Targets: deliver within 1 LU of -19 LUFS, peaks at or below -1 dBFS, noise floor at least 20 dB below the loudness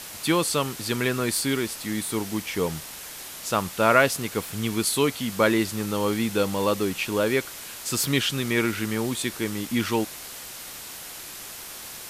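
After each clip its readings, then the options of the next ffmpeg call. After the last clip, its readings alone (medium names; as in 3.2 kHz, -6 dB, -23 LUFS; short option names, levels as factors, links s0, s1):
noise floor -39 dBFS; noise floor target -45 dBFS; loudness -25.0 LUFS; peak level -3.0 dBFS; loudness target -19.0 LUFS
-> -af "afftdn=nr=6:nf=-39"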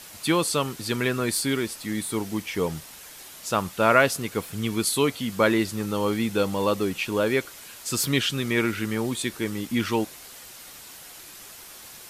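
noise floor -44 dBFS; noise floor target -45 dBFS
-> -af "afftdn=nr=6:nf=-44"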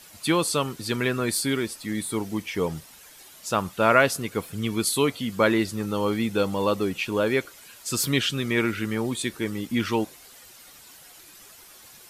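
noise floor -49 dBFS; loudness -25.5 LUFS; peak level -3.5 dBFS; loudness target -19.0 LUFS
-> -af "volume=2.11,alimiter=limit=0.891:level=0:latency=1"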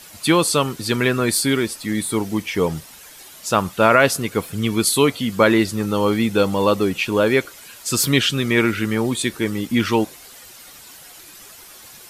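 loudness -19.0 LUFS; peak level -1.0 dBFS; noise floor -43 dBFS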